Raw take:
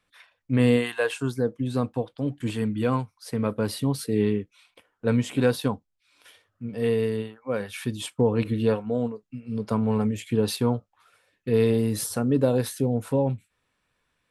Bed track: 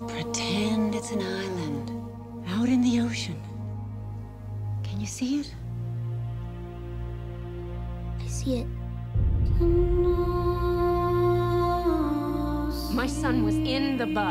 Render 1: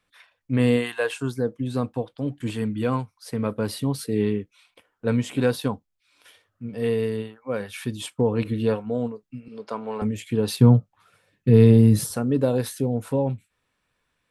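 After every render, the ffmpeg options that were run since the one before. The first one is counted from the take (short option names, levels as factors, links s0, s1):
-filter_complex "[0:a]asettb=1/sr,asplit=3[s0][s1][s2];[s0]atrim=end=9.484[s3];[s1]atrim=start=9.48:end=10.02,asetpts=PTS-STARTPTS,afade=t=in:d=0.004:c=qsin,afade=t=out:st=0.536:d=0.004:c=qsin,highpass=440,lowpass=6300[s4];[s2]atrim=start=10.016[s5];[s3][s4]acrossfade=d=0.004:c1=hsin:c2=qsin[s6];[s6][s5]acrossfade=d=0.004:c1=qsin:c2=hsin,asettb=1/sr,asplit=3[s7][s8][s9];[s7]atrim=end=10.584[s10];[s8]atrim=start=10.58:end=12.11,asetpts=PTS-STARTPTS,afade=t=in:d=0.004:c=qsin,afade=t=out:st=1.526:d=0.004:c=qsin,equalizer=f=140:w=0.76:g=14.5[s11];[s9]atrim=start=12.106[s12];[s10][s11]acrossfade=d=0.004:c1=hsin:c2=qsin[s13];[s13][s12]acrossfade=d=0.004:c1=qsin:c2=hsin"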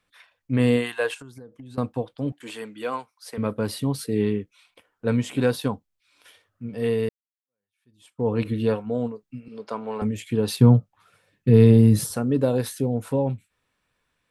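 -filter_complex "[0:a]asettb=1/sr,asplit=3[s0][s1][s2];[s0]atrim=end=1.144[s3];[s1]atrim=start=1.14:end=1.78,asetpts=PTS-STARTPTS,afade=t=in:d=0.004:c=qsin,afade=t=out:st=0.636:d=0.004:c=qsin,acompressor=threshold=0.0126:ratio=20:attack=3.2:release=140:knee=1:detection=peak[s4];[s2]atrim=start=1.776[s5];[s3][s4]acrossfade=d=0.004:c1=hsin:c2=qsin[s6];[s6][s5]acrossfade=d=0.004:c1=qsin:c2=hsin,asettb=1/sr,asplit=3[s7][s8][s9];[s7]atrim=end=2.324[s10];[s8]atrim=start=2.32:end=3.38,asetpts=PTS-STARTPTS,afade=t=in:d=0.004:c=qsin,afade=t=out:st=1.056:d=0.004:c=qsin,highpass=500[s11];[s9]atrim=start=3.376[s12];[s10][s11]acrossfade=d=0.004:c1=hsin:c2=qsin[s13];[s13][s12]acrossfade=d=0.004:c1=qsin:c2=hsin,asplit=2[s14][s15];[s14]atrim=end=7.09,asetpts=PTS-STARTPTS,afade=t=out:st=7.086:d=0.004:c=hsin[s16];[s15]atrim=start=7.09,asetpts=PTS-STARTPTS,afade=t=in:d=1.19:c=exp[s17];[s16][s17]concat=n=2:v=0:a=1"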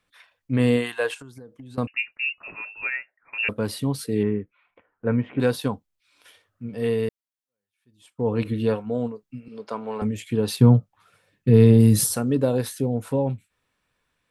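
-filter_complex "[0:a]asettb=1/sr,asplit=3[s0][s1][s2];[s0]atrim=end=1.874[s3];[s1]atrim=start=1.87:end=3.49,asetpts=PTS-STARTPTS,afade=t=in:d=0.004:c=qsin,afade=t=out:st=1.616:d=0.004:c=qsin,lowpass=f=2500:t=q:w=0.5098,lowpass=f=2500:t=q:w=0.6013,lowpass=f=2500:t=q:w=0.9,lowpass=f=2500:t=q:w=2.563,afreqshift=-2900[s4];[s2]atrim=start=3.486[s5];[s3][s4]acrossfade=d=0.004:c1=hsin:c2=qsin[s6];[s6][s5]acrossfade=d=0.004:c1=qsin:c2=hsin,asettb=1/sr,asplit=3[s7][s8][s9];[s7]atrim=end=4.234[s10];[s8]atrim=start=4.23:end=5.4,asetpts=PTS-STARTPTS,afade=t=in:d=0.004:c=qsin,afade=t=out:st=1.166:d=0.004:c=qsin,lowpass=f=2100:w=0.5412,lowpass=f=2100:w=1.3066[s11];[s9]atrim=start=5.396[s12];[s10][s11]acrossfade=d=0.004:c1=hsin:c2=qsin[s13];[s13][s12]acrossfade=d=0.004:c1=qsin:c2=hsin,asettb=1/sr,asplit=3[s14][s15][s16];[s14]atrim=end=11.804[s17];[s15]atrim=start=11.8:end=12.35,asetpts=PTS-STARTPTS,afade=t=in:d=0.004:c=qsin,afade=t=out:st=0.546:d=0.004:c=qsin,highshelf=f=3400:g=9[s18];[s16]atrim=start=12.346[s19];[s17][s18]acrossfade=d=0.004:c1=hsin:c2=qsin[s20];[s20][s19]acrossfade=d=0.004:c1=qsin:c2=hsin"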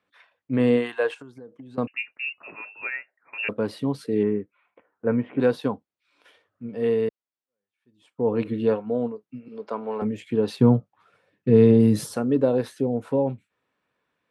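-af "highpass=340,aemphasis=mode=reproduction:type=riaa"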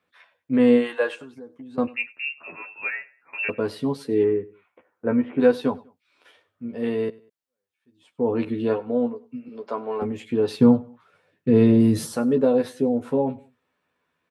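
-filter_complex "[0:a]asplit=2[s0][s1];[s1]adelay=12,volume=0.668[s2];[s0][s2]amix=inputs=2:normalize=0,aecho=1:1:98|196:0.0794|0.027"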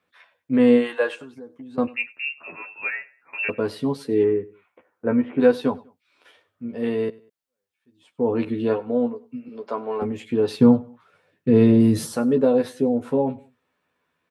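-af "volume=1.12"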